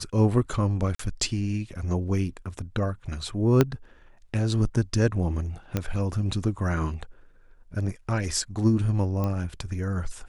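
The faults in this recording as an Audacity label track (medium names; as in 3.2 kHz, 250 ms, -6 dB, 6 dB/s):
0.950000	0.990000	dropout 44 ms
3.610000	3.610000	pop -6 dBFS
5.770000	5.770000	pop -12 dBFS
9.240000	9.240000	pop -17 dBFS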